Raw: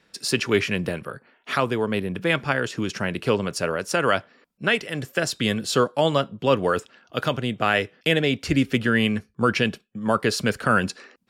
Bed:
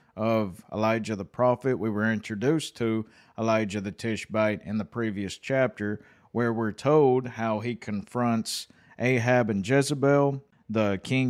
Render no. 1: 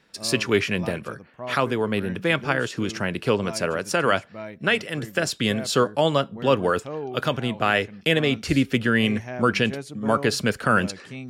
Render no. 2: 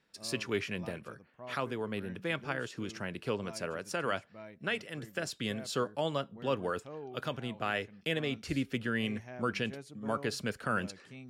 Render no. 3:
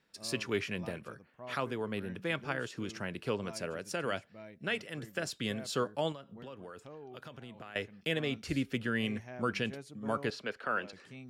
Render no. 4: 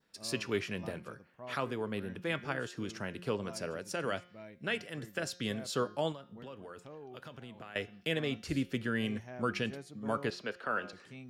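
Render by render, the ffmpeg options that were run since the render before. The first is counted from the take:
-filter_complex "[1:a]volume=-12dB[a];[0:a][a]amix=inputs=2:normalize=0"
-af "volume=-12.5dB"
-filter_complex "[0:a]asettb=1/sr,asplit=3[a][b][c];[a]atrim=end=3.614[d];[b]atrim=start=3.61:end=4.7,asetpts=PTS-STARTPTS,afade=t=in:d=0.004:c=qsin,afade=t=out:st=1.086:d=0.004:c=qsin,equalizer=f=1.1k:w=1.5:g=-5[e];[c]atrim=start=4.696[f];[d][e]acrossfade=d=0.004:c1=hsin:c2=qsin[g];[g][f]acrossfade=d=0.004:c1=qsin:c2=hsin,asettb=1/sr,asplit=3[h][i][j];[h]atrim=end=6.124[k];[i]atrim=start=6.12:end=7.76,asetpts=PTS-STARTPTS,afade=t=in:d=0.004:c=qsin,afade=t=out:st=1.636:d=0.004:c=qsin,acompressor=threshold=-44dB:ratio=6:attack=3.2:release=140:knee=1:detection=peak[l];[j]atrim=start=7.756[m];[k][l]acrossfade=d=0.004:c1=hsin:c2=qsin[n];[n][m]acrossfade=d=0.004:c1=qsin:c2=hsin,asettb=1/sr,asplit=3[o][p][q];[o]atrim=end=10.304[r];[p]atrim=start=10.3:end=10.93,asetpts=PTS-STARTPTS,afade=t=in:d=0.004:c=qsin,afade=t=out:st=0.626:d=0.004:c=qsin,acrossover=split=300 4700:gain=0.141 1 0.112[s][t][u];[s][t][u]amix=inputs=3:normalize=0[v];[q]atrim=start=10.926[w];[r][v]acrossfade=d=0.004:c1=hsin:c2=qsin[x];[x][w]acrossfade=d=0.004:c1=qsin:c2=hsin"
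-af "bandreject=f=178.2:t=h:w=4,bandreject=f=356.4:t=h:w=4,bandreject=f=534.6:t=h:w=4,bandreject=f=712.8:t=h:w=4,bandreject=f=891:t=h:w=4,bandreject=f=1.0692k:t=h:w=4,bandreject=f=1.2474k:t=h:w=4,bandreject=f=1.4256k:t=h:w=4,bandreject=f=1.6038k:t=h:w=4,bandreject=f=1.782k:t=h:w=4,bandreject=f=1.9602k:t=h:w=4,bandreject=f=2.1384k:t=h:w=4,bandreject=f=2.3166k:t=h:w=4,bandreject=f=2.4948k:t=h:w=4,bandreject=f=2.673k:t=h:w=4,bandreject=f=2.8512k:t=h:w=4,bandreject=f=3.0294k:t=h:w=4,bandreject=f=3.2076k:t=h:w=4,bandreject=f=3.3858k:t=h:w=4,bandreject=f=3.564k:t=h:w=4,bandreject=f=3.7422k:t=h:w=4,bandreject=f=3.9204k:t=h:w=4,bandreject=f=4.0986k:t=h:w=4,bandreject=f=4.2768k:t=h:w=4,bandreject=f=4.455k:t=h:w=4,bandreject=f=4.6332k:t=h:w=4,bandreject=f=4.8114k:t=h:w=4,bandreject=f=4.9896k:t=h:w=4,bandreject=f=5.1678k:t=h:w=4,bandreject=f=5.346k:t=h:w=4,bandreject=f=5.5242k:t=h:w=4,bandreject=f=5.7024k:t=h:w=4,bandreject=f=5.8806k:t=h:w=4,bandreject=f=6.0588k:t=h:w=4,bandreject=f=6.237k:t=h:w=4,bandreject=f=6.4152k:t=h:w=4,bandreject=f=6.5934k:t=h:w=4,bandreject=f=6.7716k:t=h:w=4,adynamicequalizer=threshold=0.00224:dfrequency=2400:dqfactor=1.9:tfrequency=2400:tqfactor=1.9:attack=5:release=100:ratio=0.375:range=2:mode=cutabove:tftype=bell"

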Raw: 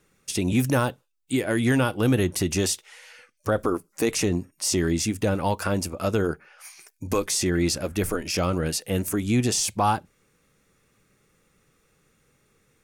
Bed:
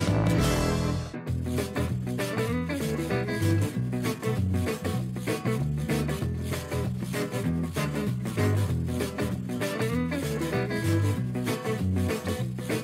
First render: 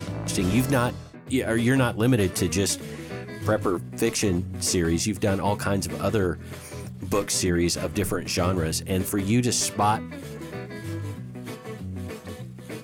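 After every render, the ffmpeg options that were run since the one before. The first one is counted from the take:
-filter_complex "[1:a]volume=-7.5dB[a];[0:a][a]amix=inputs=2:normalize=0"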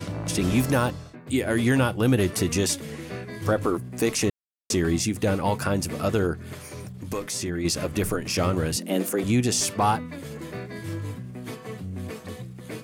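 -filter_complex "[0:a]asettb=1/sr,asplit=3[a][b][c];[a]atrim=end=6.534[d];[b]atrim=start=6.53:end=7.65,asetpts=PTS-STARTPTS,afade=t=in:d=0.004:c=qsin,afade=t=out:st=1.116:d=0.004:c=qsin,acompressor=threshold=-36dB:ratio=1.5:attack=3.2:release=140:knee=1:detection=peak[e];[c]atrim=start=7.646[f];[d][e]acrossfade=d=0.004:c1=hsin:c2=qsin[g];[g][f]acrossfade=d=0.004:c1=qsin:c2=hsin,asettb=1/sr,asplit=3[h][i][j];[h]atrim=end=8.764[k];[i]atrim=start=8.76:end=9.24,asetpts=PTS-STARTPTS,afade=t=in:d=0.004:c=qsin,afade=t=out:st=0.476:d=0.004:c=qsin,afreqshift=95[l];[j]atrim=start=9.236[m];[k][l]acrossfade=d=0.004:c1=hsin:c2=qsin[n];[n][m]acrossfade=d=0.004:c1=qsin:c2=hsin,asplit=3[o][p][q];[o]atrim=end=4.3,asetpts=PTS-STARTPTS,afade=t=out:st=4.296:d=0.004:c=hsin[r];[p]atrim=start=4.3:end=4.7,asetpts=PTS-STARTPTS,volume=0[s];[q]atrim=start=4.7,asetpts=PTS-STARTPTS,afade=t=in:d=0.004:c=hsin[t];[r][s][t]concat=n=3:v=0:a=1"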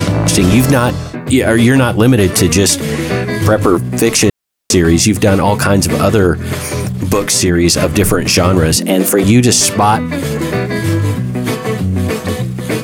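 -filter_complex "[0:a]asplit=2[a][b];[b]acompressor=threshold=-32dB:ratio=6,volume=0.5dB[c];[a][c]amix=inputs=2:normalize=0,alimiter=level_in=14dB:limit=-1dB:release=50:level=0:latency=1"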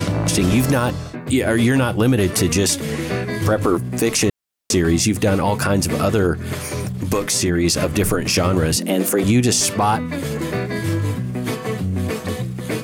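-af "volume=-7dB"

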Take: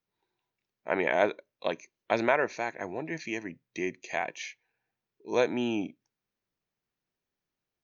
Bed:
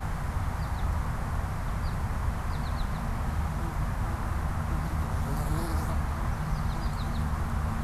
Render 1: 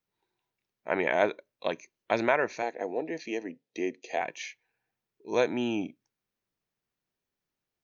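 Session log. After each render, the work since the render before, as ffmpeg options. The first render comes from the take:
-filter_complex "[0:a]asettb=1/sr,asplit=3[a][b][c];[a]atrim=end=2.624[d];[b]atrim=start=2.62:end=4.21,asetpts=PTS-STARTPTS,afade=t=in:d=0.004:c=qsin,afade=t=out:st=1.586:d=0.004:c=qsin,highpass=250,equalizer=f=260:t=q:w=4:g=5,equalizer=f=470:t=q:w=4:g=9,equalizer=f=740:t=q:w=4:g=4,equalizer=f=1.1k:t=q:w=4:g=-8,equalizer=f=1.5k:t=q:w=4:g=-7,equalizer=f=2.2k:t=q:w=4:g=-5,lowpass=f=6.2k:w=0.5412,lowpass=f=6.2k:w=1.3066[e];[c]atrim=start=4.206[f];[d][e]acrossfade=d=0.004:c1=hsin:c2=qsin[g];[g][f]acrossfade=d=0.004:c1=qsin:c2=hsin"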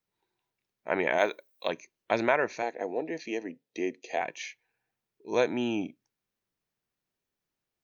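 -filter_complex "[0:a]asettb=1/sr,asplit=3[a][b][c];[a]atrim=end=1.184[d];[b]atrim=start=1.18:end=1.69,asetpts=PTS-STARTPTS,afade=t=in:d=0.004:c=qsin,afade=t=out:st=0.506:d=0.004:c=qsin,aemphasis=mode=production:type=bsi[e];[c]atrim=start=1.686[f];[d][e]acrossfade=d=0.004:c1=hsin:c2=qsin[g];[g][f]acrossfade=d=0.004:c1=qsin:c2=hsin"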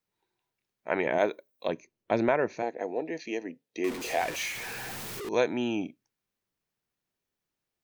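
-filter_complex "[0:a]asettb=1/sr,asplit=3[a][b][c];[a]atrim=end=1.064[d];[b]atrim=start=1.06:end=2.78,asetpts=PTS-STARTPTS,afade=t=in:d=0.004:c=qsin,afade=t=out:st=1.716:d=0.004:c=qsin,tiltshelf=f=660:g=6[e];[c]atrim=start=2.776[f];[d][e]acrossfade=d=0.004:c1=hsin:c2=qsin[g];[g][f]acrossfade=d=0.004:c1=qsin:c2=hsin,asettb=1/sr,asplit=3[h][i][j];[h]atrim=end=3.844[k];[i]atrim=start=3.84:end=5.29,asetpts=PTS-STARTPTS,afade=t=in:d=0.004:c=qsin,afade=t=out:st=1.446:d=0.004:c=qsin,aeval=exprs='val(0)+0.5*0.0266*sgn(val(0))':c=same[l];[j]atrim=start=5.286[m];[k][l]acrossfade=d=0.004:c1=hsin:c2=qsin[n];[n][m]acrossfade=d=0.004:c1=qsin:c2=hsin"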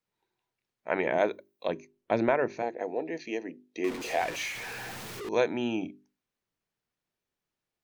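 -af "highshelf=f=7.6k:g=-7.5,bandreject=f=50:t=h:w=6,bandreject=f=100:t=h:w=6,bandreject=f=150:t=h:w=6,bandreject=f=200:t=h:w=6,bandreject=f=250:t=h:w=6,bandreject=f=300:t=h:w=6,bandreject=f=350:t=h:w=6,bandreject=f=400:t=h:w=6"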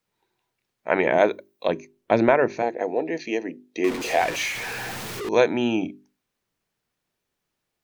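-af "volume=7.5dB"

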